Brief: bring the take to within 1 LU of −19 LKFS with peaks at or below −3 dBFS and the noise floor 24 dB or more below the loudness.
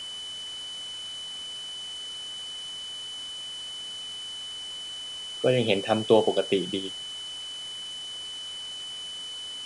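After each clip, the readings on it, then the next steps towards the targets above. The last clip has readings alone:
interfering tone 3,000 Hz; level of the tone −35 dBFS; background noise floor −38 dBFS; target noise floor −55 dBFS; integrated loudness −30.5 LKFS; sample peak −7.0 dBFS; target loudness −19.0 LKFS
→ notch filter 3,000 Hz, Q 30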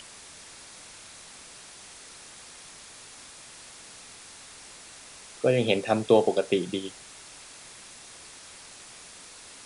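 interfering tone none found; background noise floor −48 dBFS; target noise floor −49 dBFS
→ noise reduction from a noise print 6 dB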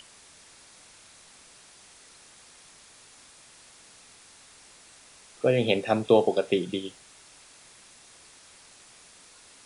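background noise floor −54 dBFS; integrated loudness −25.0 LKFS; sample peak −7.0 dBFS; target loudness −19.0 LKFS
→ level +6 dB
brickwall limiter −3 dBFS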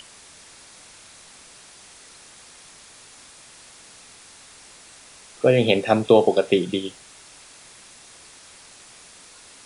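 integrated loudness −19.5 LKFS; sample peak −3.0 dBFS; background noise floor −48 dBFS

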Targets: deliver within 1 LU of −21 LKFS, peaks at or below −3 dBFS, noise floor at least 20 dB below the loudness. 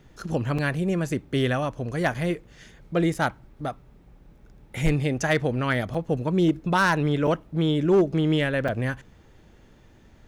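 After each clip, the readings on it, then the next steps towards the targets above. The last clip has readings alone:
share of clipped samples 0.3%; peaks flattened at −13.5 dBFS; number of dropouts 6; longest dropout 5.2 ms; integrated loudness −25.0 LKFS; sample peak −13.5 dBFS; target loudness −21.0 LKFS
→ clipped peaks rebuilt −13.5 dBFS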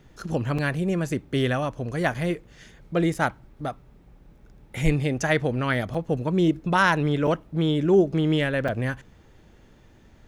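share of clipped samples 0.0%; number of dropouts 6; longest dropout 5.2 ms
→ repair the gap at 0:00.58/0:02.14/0:03.14/0:05.94/0:07.27/0:08.68, 5.2 ms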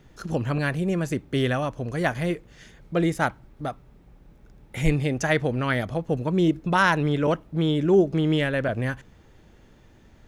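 number of dropouts 0; integrated loudness −24.5 LKFS; sample peak −7.0 dBFS; target loudness −21.0 LKFS
→ level +3.5 dB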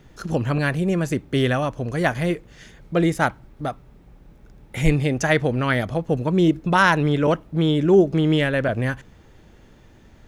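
integrated loudness −21.0 LKFS; sample peak −3.5 dBFS; background noise floor −50 dBFS

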